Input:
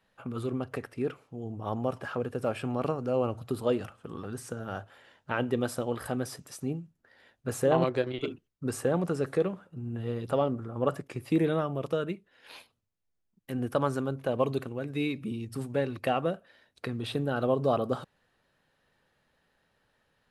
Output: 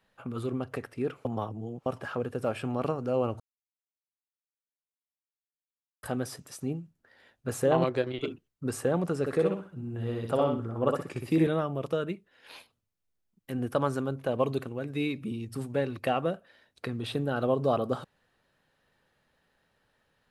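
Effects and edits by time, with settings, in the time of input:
1.25–1.86 s: reverse
3.40–6.03 s: mute
9.20–11.47 s: feedback delay 62 ms, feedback 27%, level -3.5 dB

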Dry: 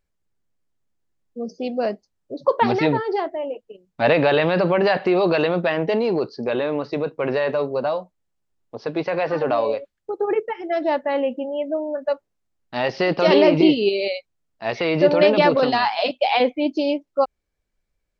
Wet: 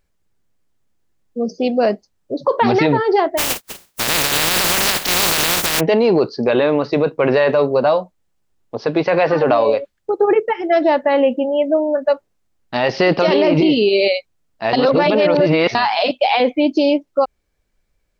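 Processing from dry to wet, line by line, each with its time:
3.37–5.79 s: spectral contrast reduction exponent 0.13
14.73–15.75 s: reverse
whole clip: peak limiter -14.5 dBFS; trim +8.5 dB

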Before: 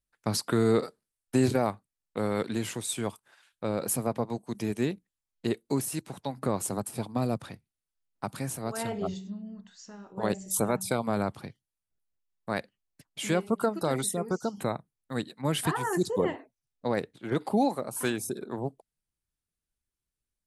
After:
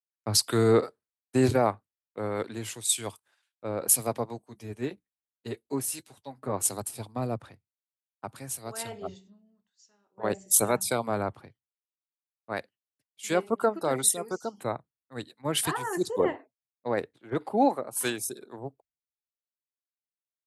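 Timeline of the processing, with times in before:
4.44–6.53 s: comb of notches 170 Hz
12.52–13.23 s: fade out, to -7 dB
whole clip: high-pass 60 Hz; peaking EQ 180 Hz -8.5 dB 0.91 oct; three bands expanded up and down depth 100%

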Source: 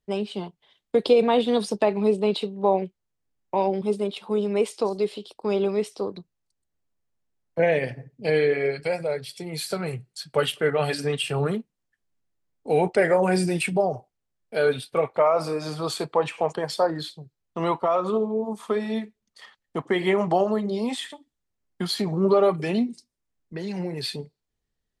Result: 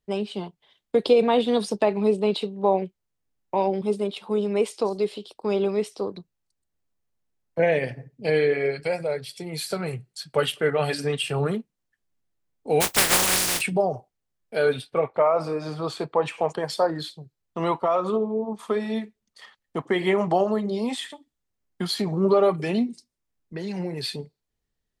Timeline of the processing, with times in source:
12.80–13.60 s: spectral contrast reduction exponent 0.14
14.82–16.24 s: low-pass 2.6 kHz 6 dB/octave
18.16–18.59 s: distance through air 190 m

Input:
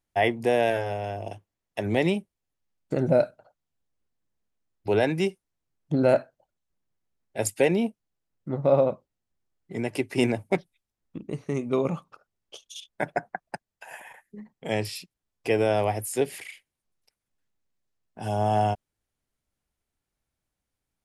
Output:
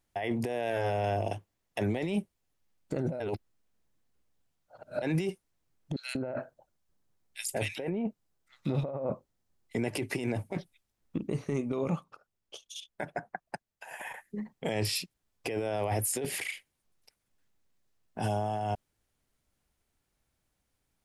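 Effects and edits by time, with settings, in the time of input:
3.20–5.02 s: reverse
5.96–9.75 s: bands offset in time highs, lows 190 ms, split 2.4 kHz
11.59–14.00 s: upward expansion, over -36 dBFS
whole clip: compressor with a negative ratio -30 dBFS, ratio -1; peak limiter -21 dBFS

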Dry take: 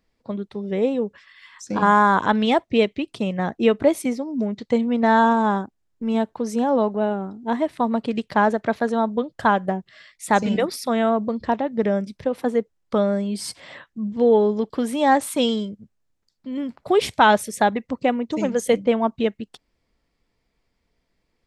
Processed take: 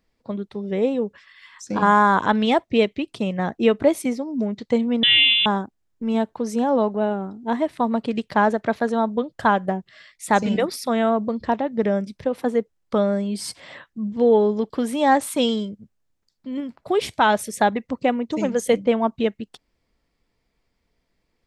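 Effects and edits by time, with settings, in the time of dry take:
5.03–5.46 s: frequency inversion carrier 3.7 kHz
16.60–17.39 s: feedback comb 330 Hz, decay 0.19 s, mix 30%

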